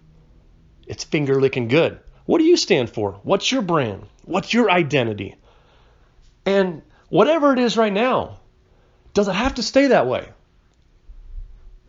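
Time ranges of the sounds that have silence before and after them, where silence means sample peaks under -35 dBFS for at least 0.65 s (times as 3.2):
0.88–5.31
6.46–8.35
9.16–10.3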